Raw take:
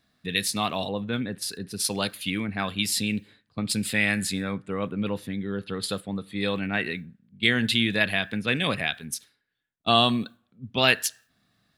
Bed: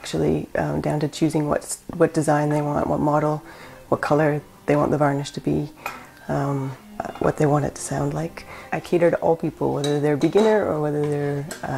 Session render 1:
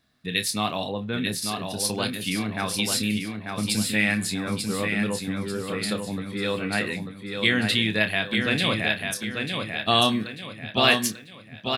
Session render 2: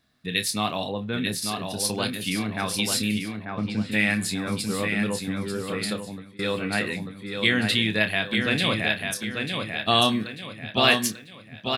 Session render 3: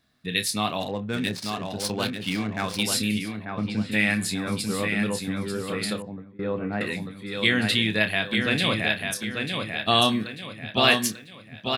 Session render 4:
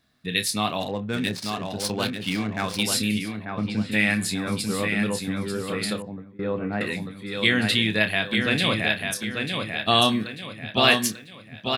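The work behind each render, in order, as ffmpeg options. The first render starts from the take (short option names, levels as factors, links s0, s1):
-filter_complex "[0:a]asplit=2[s0][s1];[s1]adelay=28,volume=0.355[s2];[s0][s2]amix=inputs=2:normalize=0,aecho=1:1:892|1784|2676|3568|4460:0.562|0.219|0.0855|0.0334|0.013"
-filter_complex "[0:a]asplit=3[s0][s1][s2];[s0]afade=t=out:st=3.44:d=0.02[s3];[s1]lowpass=2000,afade=t=in:st=3.44:d=0.02,afade=t=out:st=3.91:d=0.02[s4];[s2]afade=t=in:st=3.91:d=0.02[s5];[s3][s4][s5]amix=inputs=3:normalize=0,asplit=2[s6][s7];[s6]atrim=end=6.39,asetpts=PTS-STARTPTS,afade=t=out:st=5.82:d=0.57:silence=0.0668344[s8];[s7]atrim=start=6.39,asetpts=PTS-STARTPTS,afade=t=in:d=0.004:c=hsin:silence=0.0668344[s9];[s8][s9]concat=n=2:v=0:a=1"
-filter_complex "[0:a]asettb=1/sr,asplit=3[s0][s1][s2];[s0]atrim=end=0.804[s3];[s1]atrim=start=0.8:end=2.83,asetpts=PTS-STARTPTS,afade=t=in:d=0.004:c=qsin,afade=t=out:st=2.026:d=0.004:c=qsin,adynamicsmooth=sensitivity=5.5:basefreq=1800[s4];[s2]atrim=start=2.826[s5];[s3][s4]acrossfade=d=0.004:c1=hsin:c2=qsin[s6];[s6][s5]acrossfade=d=0.004:c1=qsin:c2=hsin,asettb=1/sr,asplit=3[s7][s8][s9];[s7]atrim=end=6.024[s10];[s8]atrim=start=6.02:end=6.81,asetpts=PTS-STARTPTS,afade=t=in:d=0.004:c=qsin,afade=t=out:st=0.786:d=0.004:c=qsin,lowpass=1100[s11];[s9]atrim=start=6.806[s12];[s10][s11]acrossfade=d=0.004:c1=hsin:c2=qsin[s13];[s13][s12]acrossfade=d=0.004:c1=qsin:c2=hsin"
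-af "volume=1.12"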